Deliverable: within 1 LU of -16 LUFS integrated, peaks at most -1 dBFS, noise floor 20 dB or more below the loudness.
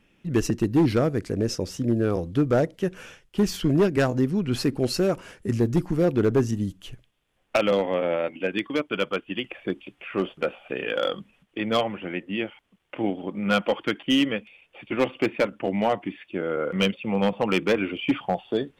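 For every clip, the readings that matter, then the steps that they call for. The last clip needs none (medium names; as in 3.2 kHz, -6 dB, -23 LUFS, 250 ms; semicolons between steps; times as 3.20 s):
clipped samples 1.0%; clipping level -14.0 dBFS; loudness -25.5 LUFS; peak level -14.0 dBFS; loudness target -16.0 LUFS
-> clip repair -14 dBFS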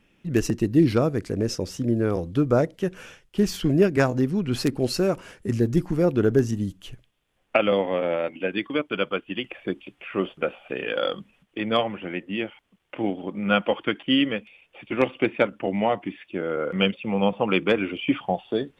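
clipped samples 0.0%; loudness -25.0 LUFS; peak level -5.0 dBFS; loudness target -16.0 LUFS
-> trim +9 dB; peak limiter -1 dBFS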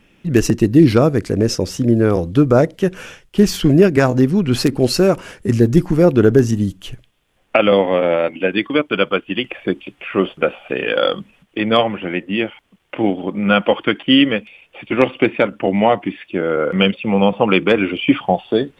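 loudness -16.5 LUFS; peak level -1.0 dBFS; noise floor -57 dBFS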